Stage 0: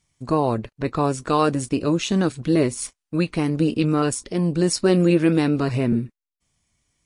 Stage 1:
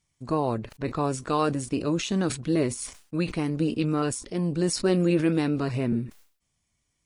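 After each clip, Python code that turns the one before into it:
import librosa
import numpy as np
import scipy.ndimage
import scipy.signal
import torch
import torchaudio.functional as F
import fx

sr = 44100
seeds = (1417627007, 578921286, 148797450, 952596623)

y = fx.sustainer(x, sr, db_per_s=130.0)
y = F.gain(torch.from_numpy(y), -5.5).numpy()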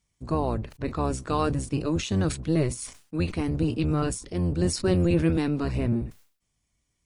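y = fx.octave_divider(x, sr, octaves=1, level_db=0.0)
y = F.gain(torch.from_numpy(y), -1.5).numpy()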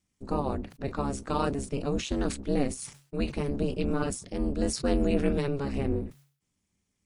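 y = x * np.sin(2.0 * np.pi * 140.0 * np.arange(len(x)) / sr)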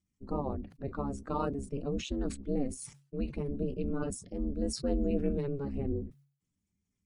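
y = fx.spec_expand(x, sr, power=1.5)
y = F.gain(torch.from_numpy(y), -4.5).numpy()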